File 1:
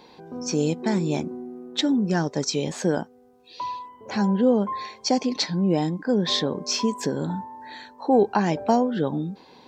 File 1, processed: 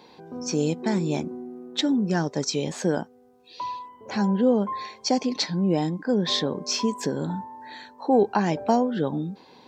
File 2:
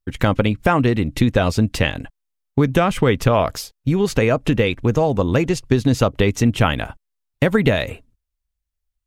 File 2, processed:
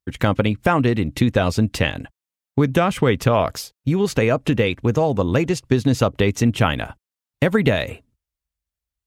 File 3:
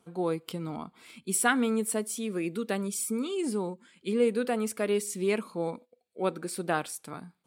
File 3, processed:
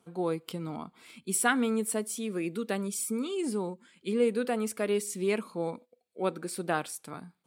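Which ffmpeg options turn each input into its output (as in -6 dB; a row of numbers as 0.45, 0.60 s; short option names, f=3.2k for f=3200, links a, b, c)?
-af "highpass=58,volume=-1dB"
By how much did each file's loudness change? -1.0, -1.0, -1.0 LU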